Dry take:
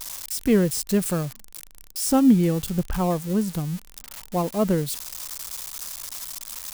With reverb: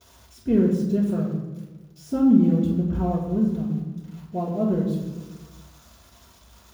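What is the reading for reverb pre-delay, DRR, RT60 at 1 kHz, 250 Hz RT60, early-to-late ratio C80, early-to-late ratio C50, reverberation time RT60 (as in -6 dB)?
3 ms, -8.5 dB, 1.1 s, 1.5 s, 5.5 dB, 3.5 dB, 1.2 s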